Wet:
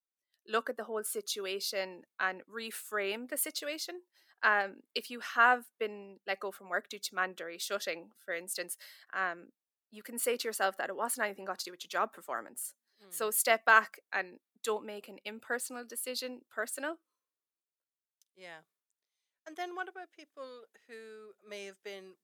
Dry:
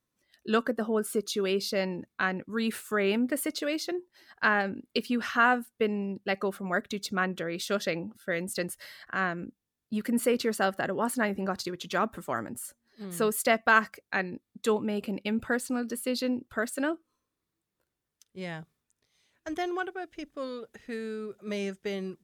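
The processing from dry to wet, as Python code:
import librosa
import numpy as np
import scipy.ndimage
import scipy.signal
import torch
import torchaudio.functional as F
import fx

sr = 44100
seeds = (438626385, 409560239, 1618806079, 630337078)

y = scipy.signal.sosfilt(scipy.signal.butter(2, 470.0, 'highpass', fs=sr, output='sos'), x)
y = fx.high_shelf(y, sr, hz=7900.0, db=6.0)
y = fx.band_widen(y, sr, depth_pct=40)
y = y * 10.0 ** (-4.5 / 20.0)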